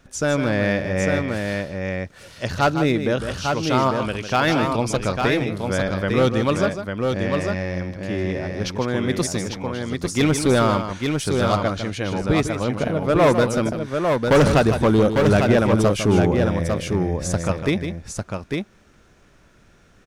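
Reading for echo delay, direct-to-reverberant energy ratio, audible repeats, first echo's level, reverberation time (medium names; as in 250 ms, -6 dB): 153 ms, no reverb, 2, -9.0 dB, no reverb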